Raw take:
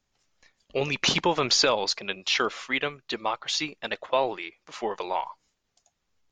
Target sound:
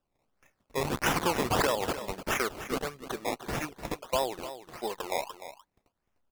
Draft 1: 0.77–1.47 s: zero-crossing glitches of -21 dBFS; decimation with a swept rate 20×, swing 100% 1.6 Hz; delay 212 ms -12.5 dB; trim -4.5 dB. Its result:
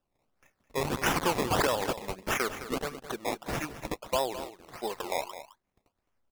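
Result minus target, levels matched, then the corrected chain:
echo 88 ms early
0.77–1.47 s: zero-crossing glitches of -21 dBFS; decimation with a swept rate 20×, swing 100% 1.6 Hz; delay 300 ms -12.5 dB; trim -4.5 dB

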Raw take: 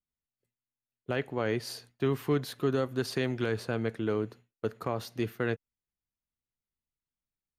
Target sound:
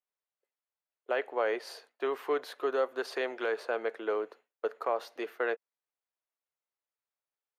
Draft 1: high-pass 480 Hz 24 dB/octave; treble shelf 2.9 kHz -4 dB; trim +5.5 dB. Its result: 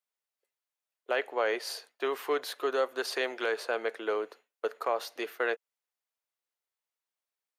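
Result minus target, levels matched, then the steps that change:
8 kHz band +8.5 dB
change: treble shelf 2.9 kHz -15.5 dB

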